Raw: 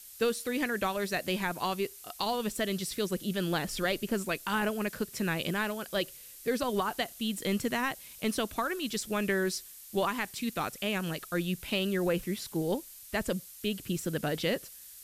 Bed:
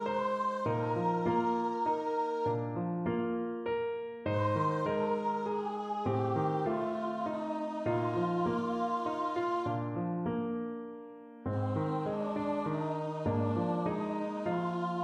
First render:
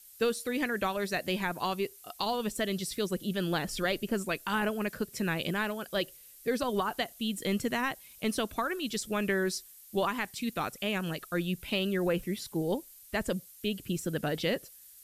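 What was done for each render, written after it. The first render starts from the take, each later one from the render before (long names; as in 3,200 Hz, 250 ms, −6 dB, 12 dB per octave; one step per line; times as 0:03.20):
broadband denoise 7 dB, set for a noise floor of −50 dBFS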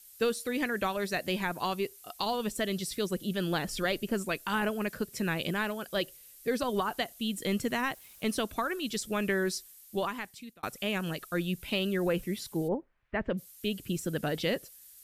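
0:07.62–0:08.42: centre clipping without the shift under −54.5 dBFS
0:09.51–0:10.63: fade out equal-power
0:12.67–0:13.37: low-pass filter 1,300 Hz → 2,900 Hz 24 dB per octave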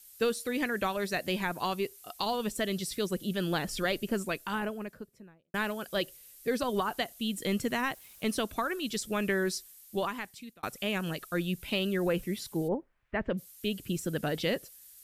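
0:04.12–0:05.54: fade out and dull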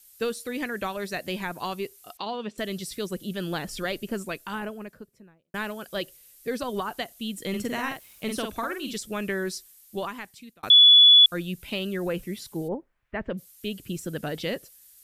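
0:02.17–0:02.58: Chebyshev band-pass filter 220–3,200 Hz
0:07.49–0:08.98: double-tracking delay 48 ms −4.5 dB
0:10.70–0:11.26: beep over 3,420 Hz −10 dBFS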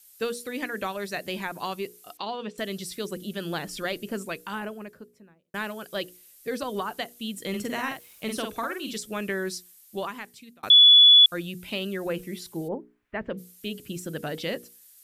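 low-shelf EQ 69 Hz −10.5 dB
mains-hum notches 60/120/180/240/300/360/420/480 Hz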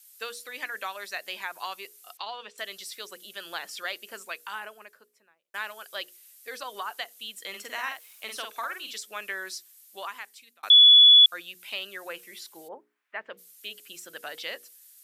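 high-pass filter 910 Hz 12 dB per octave
dynamic equaliser 9,900 Hz, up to −4 dB, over −49 dBFS, Q 1.1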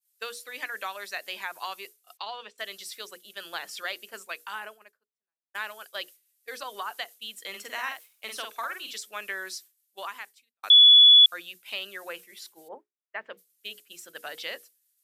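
mains-hum notches 60/120/180/240/300/360 Hz
downward expander −41 dBFS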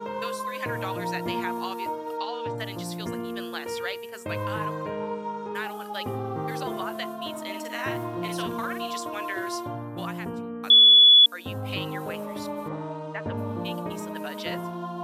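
mix in bed 0 dB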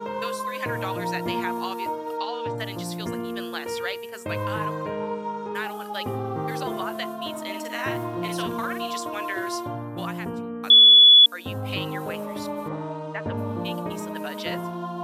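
level +2 dB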